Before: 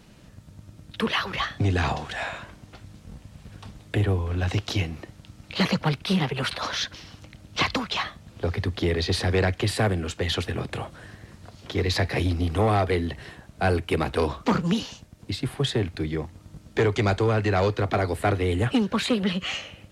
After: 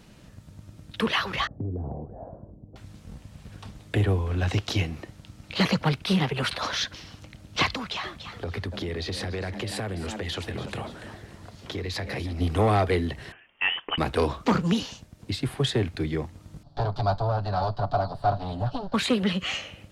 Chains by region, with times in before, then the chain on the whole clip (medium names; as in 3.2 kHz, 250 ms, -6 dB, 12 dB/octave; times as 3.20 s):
1.47–2.76 s: inverse Chebyshev low-pass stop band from 2.6 kHz, stop band 70 dB + compression 4:1, threshold -29 dBFS
7.74–12.41 s: frequency-shifting echo 287 ms, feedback 33%, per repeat +110 Hz, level -14 dB + compression 5:1, threshold -28 dBFS
13.32–13.98 s: high-pass 530 Hz + frequency inversion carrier 3.4 kHz + tape noise reduction on one side only decoder only
16.63–18.94 s: comb filter that takes the minimum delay 7 ms + FFT filter 120 Hz 0 dB, 190 Hz -6 dB, 450 Hz -14 dB, 660 Hz +5 dB, 1.5 kHz -9 dB, 2.1 kHz -26 dB, 4.5 kHz -1 dB, 6.4 kHz -21 dB, 13 kHz -27 dB
whole clip: none